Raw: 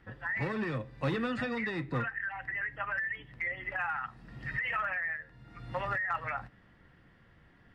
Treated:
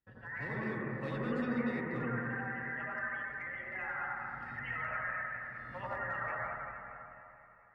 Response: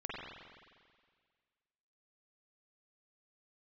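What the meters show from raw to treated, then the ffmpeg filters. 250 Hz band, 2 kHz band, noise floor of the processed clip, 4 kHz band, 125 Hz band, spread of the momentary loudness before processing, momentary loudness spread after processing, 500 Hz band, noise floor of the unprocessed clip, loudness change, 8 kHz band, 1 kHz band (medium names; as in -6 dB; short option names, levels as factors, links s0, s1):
-0.5 dB, -4.0 dB, -58 dBFS, under -10 dB, -3.5 dB, 9 LU, 9 LU, -2.5 dB, -61 dBFS, -3.5 dB, no reading, -3.0 dB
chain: -filter_complex "[0:a]agate=range=0.0891:threshold=0.00158:ratio=16:detection=peak[s0];[1:a]atrim=start_sample=2205,asetrate=25578,aresample=44100[s1];[s0][s1]afir=irnorm=-1:irlink=0,volume=0.355"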